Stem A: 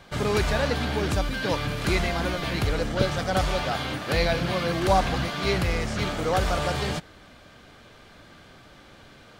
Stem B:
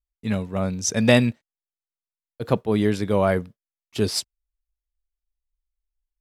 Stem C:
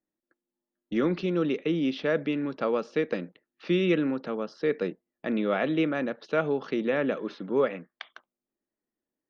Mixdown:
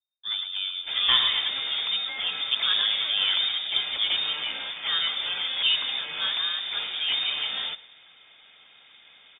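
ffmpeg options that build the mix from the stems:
-filter_complex "[0:a]adelay=750,volume=-3.5dB,asplit=2[a][b];[b]volume=-19.5dB[c];[1:a]volume=-6.5dB,asplit=2[d][e];[e]volume=-6.5dB[f];[c][f]amix=inputs=2:normalize=0,aecho=0:1:109|218|327|436|545|654:1|0.41|0.168|0.0689|0.0283|0.0116[g];[a][d][g]amix=inputs=3:normalize=0,lowpass=f=3.1k:t=q:w=0.5098,lowpass=f=3.1k:t=q:w=0.6013,lowpass=f=3.1k:t=q:w=0.9,lowpass=f=3.1k:t=q:w=2.563,afreqshift=-3700"

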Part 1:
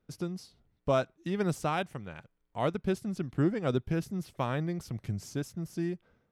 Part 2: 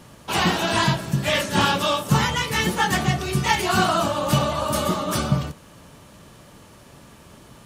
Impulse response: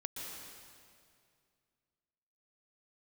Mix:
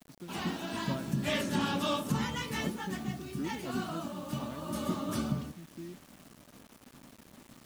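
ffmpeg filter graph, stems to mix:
-filter_complex "[0:a]highpass=f=51:w=0.5412,highpass=f=51:w=1.3066,volume=-16.5dB[a];[1:a]bandreject=f=105.3:t=h:w=4,bandreject=f=210.6:t=h:w=4,bandreject=f=315.9:t=h:w=4,bandreject=f=421.2:t=h:w=4,bandreject=f=526.5:t=h:w=4,bandreject=f=631.8:t=h:w=4,bandreject=f=737.1:t=h:w=4,bandreject=f=842.4:t=h:w=4,bandreject=f=947.7:t=h:w=4,volume=-1.5dB,afade=t=in:st=0.87:d=0.36:silence=0.316228,afade=t=out:st=2.12:d=0.68:silence=0.237137,afade=t=in:st=4.57:d=0.36:silence=0.473151[b];[a][b]amix=inputs=2:normalize=0,equalizer=f=250:w=1.9:g=12.5,acrusher=bits=8:mix=0:aa=0.000001,alimiter=limit=-19.5dB:level=0:latency=1:release=403"

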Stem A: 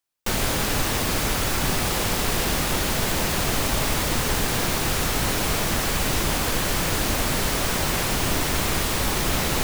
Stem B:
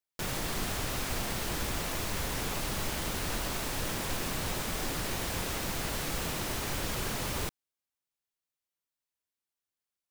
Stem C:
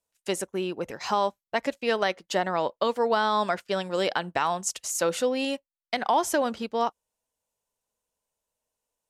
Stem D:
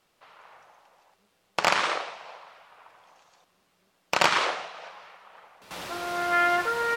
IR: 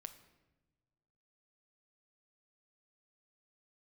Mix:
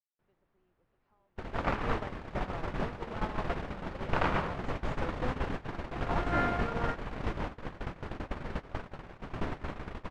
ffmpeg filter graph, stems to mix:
-filter_complex "[0:a]adelay=1100,volume=-5.5dB,asplit=2[a][b];[b]volume=-12.5dB[c];[1:a]volume=-4.5dB[d];[2:a]asubboost=boost=5:cutoff=160,acompressor=threshold=-26dB:ratio=2.5,volume=-7.5dB,asplit=2[e][f];[f]volume=-9dB[g];[3:a]volume=-7.5dB[h];[c][g]amix=inputs=2:normalize=0,aecho=0:1:633|1266|1899|2532|3165|3798|4431|5064:1|0.56|0.314|0.176|0.0983|0.0551|0.0308|0.0173[i];[a][d][e][h][i]amix=inputs=5:normalize=0,lowpass=1.7k,agate=range=-37dB:threshold=-27dB:ratio=16:detection=peak"

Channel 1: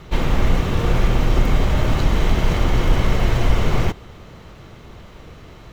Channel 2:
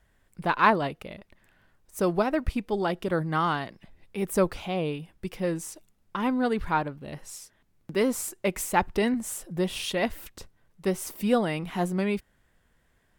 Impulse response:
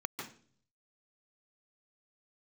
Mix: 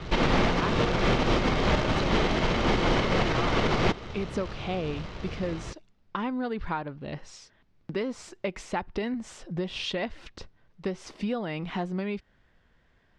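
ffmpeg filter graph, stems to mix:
-filter_complex "[0:a]acrossover=split=160[a][b];[a]acompressor=threshold=-29dB:ratio=4[c];[c][b]amix=inputs=2:normalize=0,acrusher=bits=2:mode=log:mix=0:aa=0.000001,volume=2dB[d];[1:a]acompressor=threshold=-30dB:ratio=6,volume=2.5dB[e];[d][e]amix=inputs=2:normalize=0,lowpass=f=5.3k:w=0.5412,lowpass=f=5.3k:w=1.3066,alimiter=limit=-15dB:level=0:latency=1:release=82"

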